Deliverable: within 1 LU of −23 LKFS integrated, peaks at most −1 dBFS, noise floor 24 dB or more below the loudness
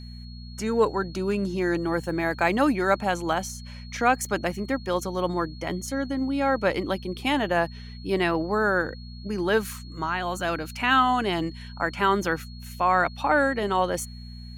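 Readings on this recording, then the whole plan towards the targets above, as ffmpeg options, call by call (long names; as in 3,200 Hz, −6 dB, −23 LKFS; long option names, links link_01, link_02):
mains hum 60 Hz; hum harmonics up to 240 Hz; level of the hum −38 dBFS; interfering tone 4,300 Hz; level of the tone −48 dBFS; integrated loudness −25.5 LKFS; sample peak −8.5 dBFS; target loudness −23.0 LKFS
→ -af "bandreject=frequency=60:width_type=h:width=4,bandreject=frequency=120:width_type=h:width=4,bandreject=frequency=180:width_type=h:width=4,bandreject=frequency=240:width_type=h:width=4"
-af "bandreject=frequency=4300:width=30"
-af "volume=2.5dB"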